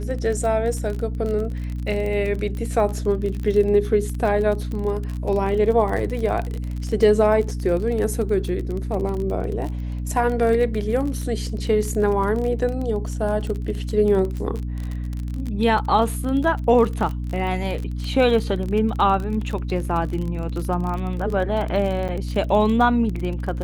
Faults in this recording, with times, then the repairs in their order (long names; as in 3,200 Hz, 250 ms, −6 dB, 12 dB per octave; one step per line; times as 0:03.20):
surface crackle 30 per second −26 dBFS
mains hum 60 Hz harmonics 5 −27 dBFS
0:22.08–0:22.09: drop-out 7.2 ms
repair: click removal
hum removal 60 Hz, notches 5
repair the gap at 0:22.08, 7.2 ms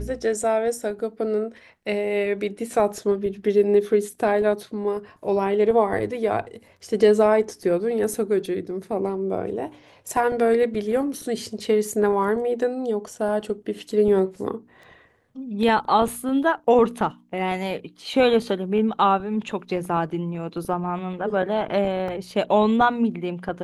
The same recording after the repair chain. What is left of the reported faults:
none of them is left